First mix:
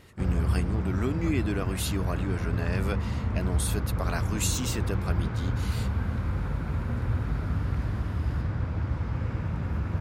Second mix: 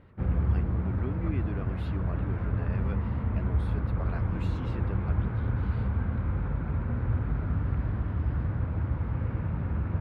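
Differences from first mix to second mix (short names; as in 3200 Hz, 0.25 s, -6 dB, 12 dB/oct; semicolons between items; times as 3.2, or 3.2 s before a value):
speech -7.0 dB; master: add air absorption 430 m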